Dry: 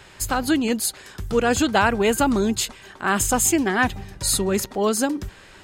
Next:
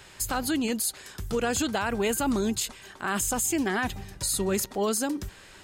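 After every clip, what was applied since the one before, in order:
high-shelf EQ 4,800 Hz +7.5 dB
brickwall limiter −13.5 dBFS, peak gain reduction 11 dB
level −4.5 dB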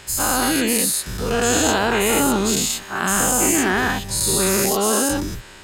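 every bin's largest magnitude spread in time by 240 ms
level +2 dB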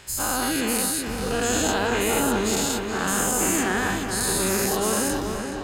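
feedback echo with a low-pass in the loop 423 ms, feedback 67%, low-pass 3,700 Hz, level −6 dB
level −5.5 dB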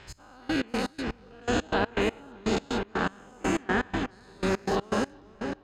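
gate pattern "x...x.x." 122 BPM −24 dB
high-frequency loss of the air 190 metres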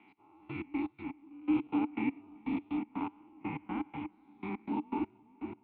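single-sideband voice off tune −180 Hz 210–3,400 Hz
formant filter u
level +4.5 dB

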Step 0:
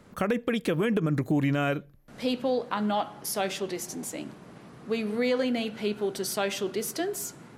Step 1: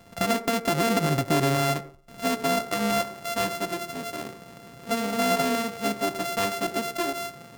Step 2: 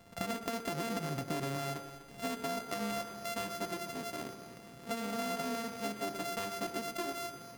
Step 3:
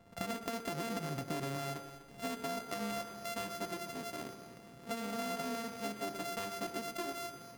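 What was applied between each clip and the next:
samples sorted by size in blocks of 64 samples; on a send at −16 dB: convolution reverb RT60 0.40 s, pre-delay 76 ms; on the sum: level +2 dB
downward compressor, threshold −27 dBFS, peak gain reduction 8 dB; echo machine with several playback heads 124 ms, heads first and second, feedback 47%, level −14.5 dB; level −6.5 dB
one half of a high-frequency compander decoder only; level −2 dB

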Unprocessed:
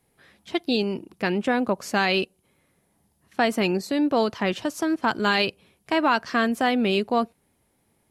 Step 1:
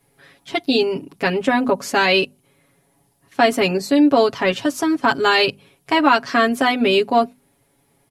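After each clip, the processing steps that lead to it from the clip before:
mains-hum notches 50/100/150/200/250 Hz
comb filter 7.2 ms, depth 92%
level +4 dB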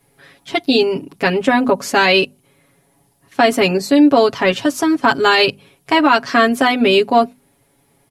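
boost into a limiter +4.5 dB
level −1 dB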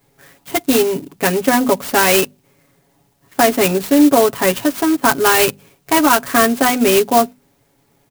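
converter with an unsteady clock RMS 0.062 ms

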